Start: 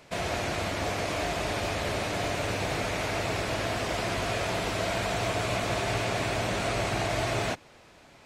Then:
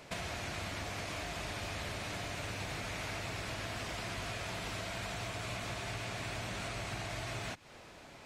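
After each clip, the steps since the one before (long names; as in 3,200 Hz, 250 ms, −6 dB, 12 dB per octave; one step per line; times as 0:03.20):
downward compressor 12 to 1, threshold −35 dBFS, peak gain reduction 11 dB
dynamic equaliser 480 Hz, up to −7 dB, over −53 dBFS, Q 0.76
level +1 dB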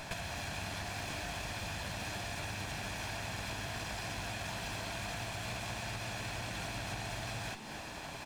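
lower of the sound and its delayed copy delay 1.2 ms
downward compressor 6 to 1, threshold −48 dBFS, peak gain reduction 11 dB
echo with shifted repeats 258 ms, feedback 59%, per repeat +100 Hz, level −10.5 dB
level +10 dB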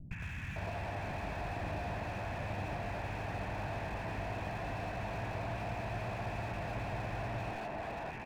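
Chebyshev low-pass with heavy ripple 2,700 Hz, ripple 3 dB
three-band delay without the direct sound lows, highs, mids 110/560 ms, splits 240/1,400 Hz
slew-rate limiting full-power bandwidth 5.5 Hz
level +6.5 dB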